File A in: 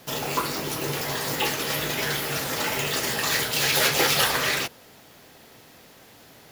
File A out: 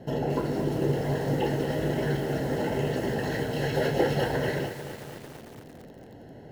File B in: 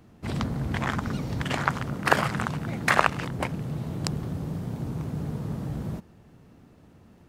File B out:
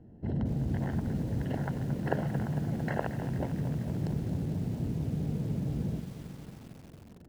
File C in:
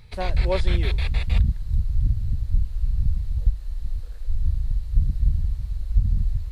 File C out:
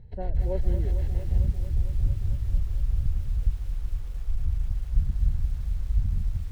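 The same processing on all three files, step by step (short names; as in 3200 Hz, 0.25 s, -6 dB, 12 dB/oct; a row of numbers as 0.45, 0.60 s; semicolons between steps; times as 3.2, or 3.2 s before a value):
in parallel at +0.5 dB: compressor 4:1, threshold -34 dBFS; on the sum: running mean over 37 samples; lo-fi delay 0.226 s, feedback 80%, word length 7-bit, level -11 dB; normalise peaks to -12 dBFS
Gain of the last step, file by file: +3.0, -4.5, -6.0 dB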